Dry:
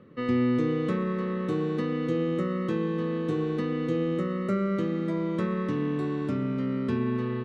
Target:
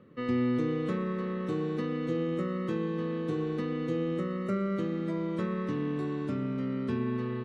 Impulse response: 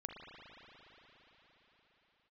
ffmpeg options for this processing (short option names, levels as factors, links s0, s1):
-af "volume=0.668" -ar 44100 -c:a aac -b:a 64k